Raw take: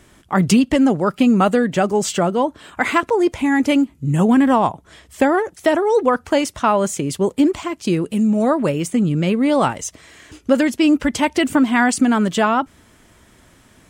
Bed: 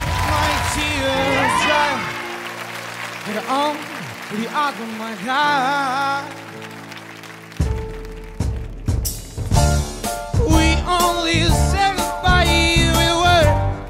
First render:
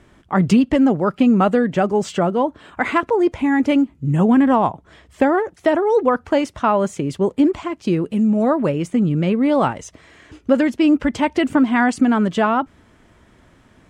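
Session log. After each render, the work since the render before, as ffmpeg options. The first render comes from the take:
-af "aemphasis=mode=reproduction:type=75kf"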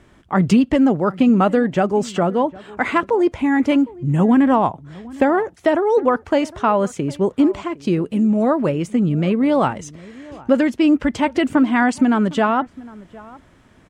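-filter_complex "[0:a]asplit=2[s0][s1];[s1]adelay=758,volume=0.0891,highshelf=f=4000:g=-17.1[s2];[s0][s2]amix=inputs=2:normalize=0"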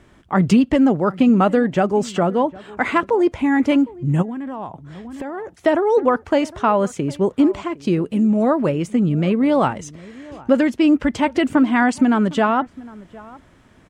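-filter_complex "[0:a]asplit=3[s0][s1][s2];[s0]afade=t=out:st=4.21:d=0.02[s3];[s1]acompressor=threshold=0.0562:ratio=12:attack=3.2:release=140:knee=1:detection=peak,afade=t=in:st=4.21:d=0.02,afade=t=out:st=5.59:d=0.02[s4];[s2]afade=t=in:st=5.59:d=0.02[s5];[s3][s4][s5]amix=inputs=3:normalize=0"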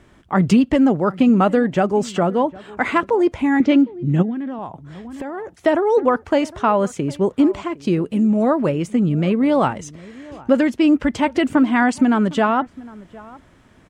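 -filter_complex "[0:a]asettb=1/sr,asplit=3[s0][s1][s2];[s0]atrim=end=3.604[s3];[s1]atrim=start=3.6:end=4.59,asetpts=PTS-STARTPTS,afade=t=in:d=0.004:c=qsin,afade=t=out:st=0.986:d=0.004:c=qsin,highpass=110,equalizer=f=210:t=q:w=4:g=7,equalizer=f=350:t=q:w=4:g=5,equalizer=f=980:t=q:w=4:g=-8,equalizer=f=3700:t=q:w=4:g=4,lowpass=f=6200:w=0.5412,lowpass=f=6200:w=1.3066[s4];[s2]atrim=start=4.586[s5];[s3][s4]acrossfade=d=0.004:c1=hsin:c2=qsin[s6];[s6][s5]acrossfade=d=0.004:c1=qsin:c2=hsin"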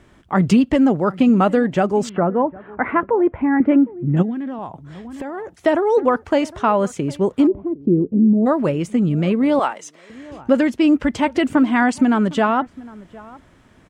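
-filter_complex "[0:a]asettb=1/sr,asplit=3[s0][s1][s2];[s0]atrim=end=2.094[s3];[s1]atrim=start=2.09:end=4.17,asetpts=PTS-STARTPTS,afade=t=in:d=0.004:c=qsin,afade=t=out:st=2.076:d=0.004:c=qsin,lowpass=f=1900:w=0.5412,lowpass=f=1900:w=1.3066[s4];[s2]atrim=start=4.166[s5];[s3][s4]acrossfade=d=0.004:c1=hsin:c2=qsin[s6];[s6][s5]acrossfade=d=0.004:c1=qsin:c2=hsin,asplit=3[s7][s8][s9];[s7]afade=t=out:st=7.46:d=0.02[s10];[s8]lowpass=f=340:t=q:w=1.5,afade=t=in:st=7.46:d=0.02,afade=t=out:st=8.45:d=0.02[s11];[s9]afade=t=in:st=8.45:d=0.02[s12];[s10][s11][s12]amix=inputs=3:normalize=0,asettb=1/sr,asplit=3[s13][s14][s15];[s13]atrim=end=9.594[s16];[s14]atrim=start=9.59:end=10.1,asetpts=PTS-STARTPTS,afade=t=in:d=0.004:c=qsin,afade=t=out:st=0.506:d=0.004:c=qsin,highpass=560[s17];[s15]atrim=start=10.096[s18];[s16][s17]acrossfade=d=0.004:c1=hsin:c2=qsin[s19];[s19][s18]acrossfade=d=0.004:c1=qsin:c2=hsin"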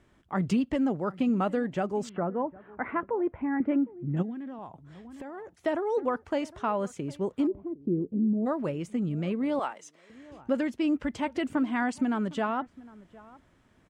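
-af "volume=0.251"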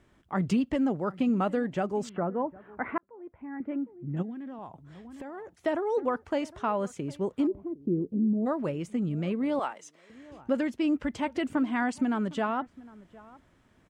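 -filter_complex "[0:a]asplit=2[s0][s1];[s0]atrim=end=2.98,asetpts=PTS-STARTPTS,afade=t=out:st=2.976:d=0.004:c=hsin[s2];[s1]atrim=start=2.98,asetpts=PTS-STARTPTS,afade=t=in:d=1.69[s3];[s2][s3]concat=n=2:v=0:a=1"

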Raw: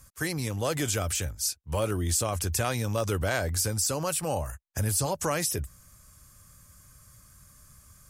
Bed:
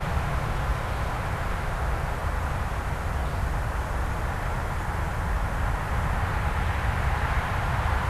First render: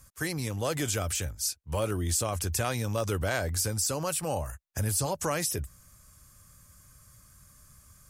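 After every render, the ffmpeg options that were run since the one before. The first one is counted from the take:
-af "volume=0.841"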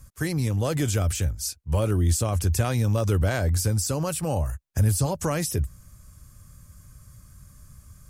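-af "lowshelf=f=320:g=11"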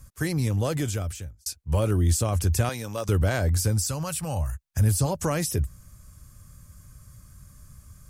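-filter_complex "[0:a]asettb=1/sr,asplit=3[s0][s1][s2];[s0]atrim=end=2.694[s3];[s1]atrim=start=2.69:end=3.09,asetpts=PTS-STARTPTS,afade=t=in:d=0.004:c=qsin,afade=t=out:st=0.396:d=0.004:c=qsin,highpass=f=600:p=1[s4];[s2]atrim=start=3.086[s5];[s3][s4]acrossfade=d=0.004:c1=hsin:c2=qsin[s6];[s6][s5]acrossfade=d=0.004:c1=qsin:c2=hsin,asettb=1/sr,asplit=3[s7][s8][s9];[s7]atrim=end=3.844[s10];[s8]atrim=start=3.84:end=4.81,asetpts=PTS-STARTPTS,afade=t=in:d=0.004:c=qsin,afade=t=out:st=0.966:d=0.004:c=qsin,equalizer=f=370:w=0.87:g=-10[s11];[s9]atrim=start=4.806[s12];[s10][s11]acrossfade=d=0.004:c1=hsin:c2=qsin[s13];[s13][s12]acrossfade=d=0.004:c1=qsin:c2=hsin,asplit=2[s14][s15];[s14]atrim=end=1.46,asetpts=PTS-STARTPTS,afade=t=out:st=0.6:d=0.86[s16];[s15]atrim=start=1.46,asetpts=PTS-STARTPTS,afade=t=in:d=0.004:c=hsin[s17];[s16][s17]concat=n=2:v=0:a=1"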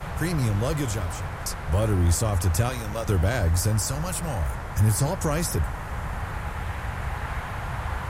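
-filter_complex "[1:a]volume=0.562[s0];[0:a][s0]amix=inputs=2:normalize=0"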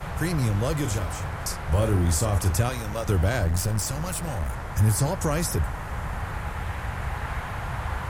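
-filter_complex "[0:a]asettb=1/sr,asplit=3[s0][s1][s2];[s0]atrim=end=0.804[s3];[s1]atrim=start=0.8:end=2.54,asetpts=PTS-STARTPTS,afade=t=in:d=0.004:c=qsin,afade=t=out:st=1.736:d=0.004:c=qsin,asplit=2[s4][s5];[s5]adelay=40,volume=0.376[s6];[s4][s6]amix=inputs=2:normalize=0,atrim=end_sample=76734[s7];[s2]atrim=start=2.536[s8];[s3][s7]acrossfade=d=0.004:c1=hsin:c2=qsin[s9];[s9][s8]acrossfade=d=0.004:c1=qsin:c2=hsin,asettb=1/sr,asplit=3[s10][s11][s12];[s10]atrim=end=3.444[s13];[s11]atrim=start=3.44:end=4.68,asetpts=PTS-STARTPTS,afade=t=in:d=0.004:c=qsin,afade=t=out:st=1.236:d=0.004:c=qsin,aeval=exprs='clip(val(0),-1,0.0422)':c=same[s14];[s12]atrim=start=4.676[s15];[s13][s14]acrossfade=d=0.004:c1=hsin:c2=qsin[s16];[s16][s15]acrossfade=d=0.004:c1=qsin:c2=hsin"

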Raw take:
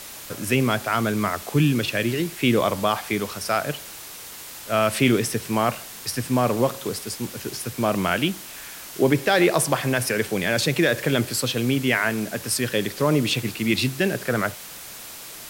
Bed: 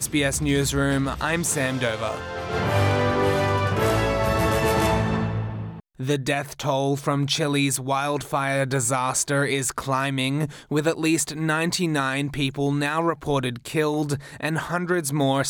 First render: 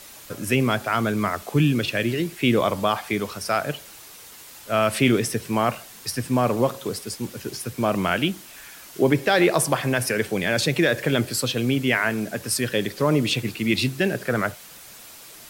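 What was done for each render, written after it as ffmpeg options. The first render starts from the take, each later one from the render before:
-af "afftdn=nr=6:nf=-39"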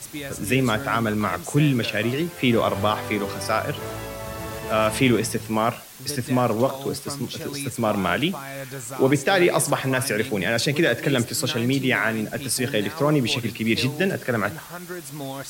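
-filter_complex "[1:a]volume=0.266[s0];[0:a][s0]amix=inputs=2:normalize=0"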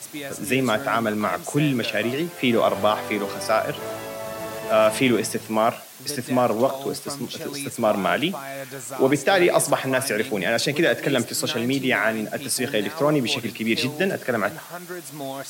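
-af "highpass=170,equalizer=f=660:t=o:w=0.28:g=5.5"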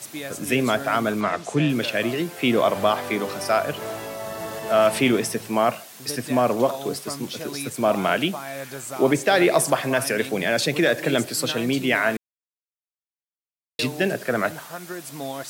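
-filter_complex "[0:a]asplit=3[s0][s1][s2];[s0]afade=t=out:st=1.2:d=0.02[s3];[s1]lowpass=6400,afade=t=in:st=1.2:d=0.02,afade=t=out:st=1.68:d=0.02[s4];[s2]afade=t=in:st=1.68:d=0.02[s5];[s3][s4][s5]amix=inputs=3:normalize=0,asettb=1/sr,asplit=3[s6][s7][s8];[s6]atrim=end=4.144[s9];[s7]atrim=start=4.14:end=4.87,asetpts=PTS-STARTPTS,afade=t=in:d=0.004:c=qsin,afade=t=out:st=0.726:d=0.004:c=qsin,bandreject=f=2400:w=12[s10];[s8]atrim=start=4.866[s11];[s9][s10]acrossfade=d=0.004:c1=hsin:c2=qsin[s12];[s12][s11]acrossfade=d=0.004:c1=qsin:c2=hsin,asplit=3[s13][s14][s15];[s13]atrim=end=12.17,asetpts=PTS-STARTPTS,afade=t=out:st=12.166:d=0.004:c=hsin[s16];[s14]atrim=start=12.17:end=13.79,asetpts=PTS-STARTPTS,volume=0[s17];[s15]atrim=start=13.79,asetpts=PTS-STARTPTS,afade=t=in:d=0.004:c=hsin[s18];[s16][s17][s18]concat=n=3:v=0:a=1"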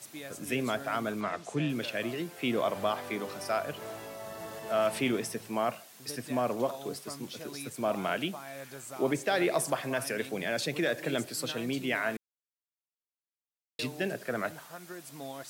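-af "volume=0.316"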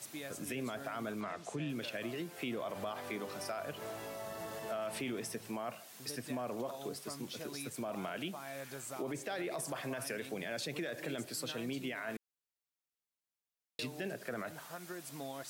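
-af "alimiter=limit=0.0631:level=0:latency=1:release=25,acompressor=threshold=0.00891:ratio=2"

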